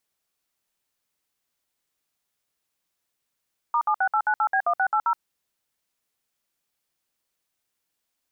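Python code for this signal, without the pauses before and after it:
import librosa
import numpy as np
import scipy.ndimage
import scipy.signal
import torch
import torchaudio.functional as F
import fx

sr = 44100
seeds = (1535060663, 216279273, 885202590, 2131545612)

y = fx.dtmf(sr, digits='*76898B1680', tone_ms=72, gap_ms=60, level_db=-21.5)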